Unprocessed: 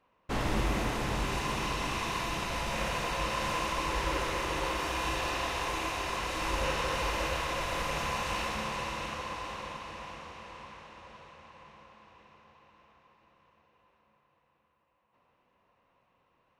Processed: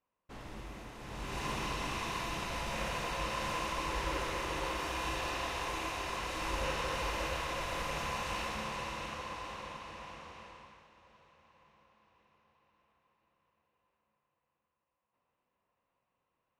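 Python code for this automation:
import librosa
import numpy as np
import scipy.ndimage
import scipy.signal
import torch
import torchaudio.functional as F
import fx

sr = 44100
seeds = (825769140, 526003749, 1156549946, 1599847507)

y = fx.gain(x, sr, db=fx.line((0.95, -16.5), (1.45, -4.0), (10.42, -4.0), (10.9, -12.0)))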